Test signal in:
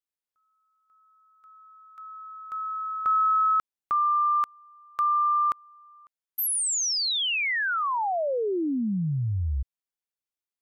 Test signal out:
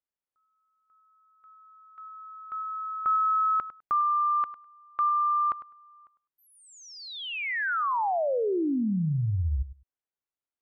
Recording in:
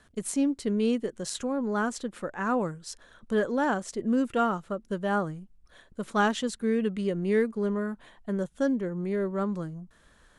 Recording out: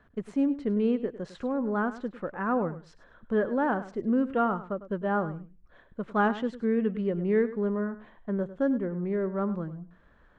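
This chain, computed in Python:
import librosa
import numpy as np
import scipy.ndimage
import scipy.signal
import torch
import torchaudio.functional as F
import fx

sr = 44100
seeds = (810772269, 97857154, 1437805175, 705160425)

y = scipy.signal.sosfilt(scipy.signal.butter(2, 1800.0, 'lowpass', fs=sr, output='sos'), x)
y = fx.echo_feedback(y, sr, ms=102, feedback_pct=15, wet_db=-14.5)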